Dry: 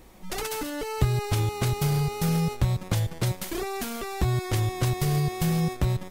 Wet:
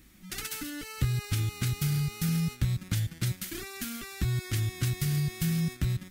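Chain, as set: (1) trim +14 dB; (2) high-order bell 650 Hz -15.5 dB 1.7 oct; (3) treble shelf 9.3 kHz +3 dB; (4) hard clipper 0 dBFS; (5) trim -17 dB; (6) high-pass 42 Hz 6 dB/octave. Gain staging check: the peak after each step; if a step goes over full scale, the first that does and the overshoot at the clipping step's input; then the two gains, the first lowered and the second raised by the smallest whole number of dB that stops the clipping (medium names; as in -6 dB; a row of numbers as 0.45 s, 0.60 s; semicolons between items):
+5.5 dBFS, +5.0 dBFS, +5.0 dBFS, 0.0 dBFS, -17.0 dBFS, -16.5 dBFS; step 1, 5.0 dB; step 1 +9 dB, step 5 -12 dB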